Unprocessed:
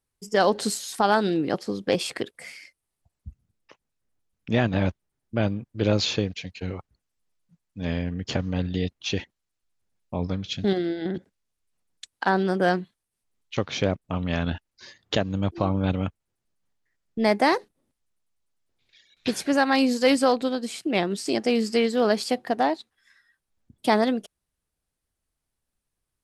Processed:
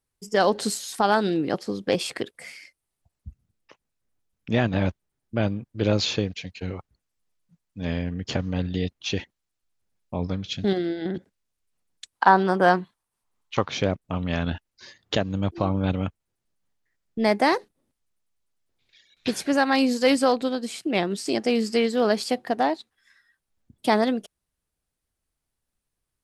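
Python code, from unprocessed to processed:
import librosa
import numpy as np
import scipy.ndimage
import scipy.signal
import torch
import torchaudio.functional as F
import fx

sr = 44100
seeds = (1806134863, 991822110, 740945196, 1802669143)

y = fx.peak_eq(x, sr, hz=1000.0, db=11.0, octaves=0.96, at=(12.15, 13.69))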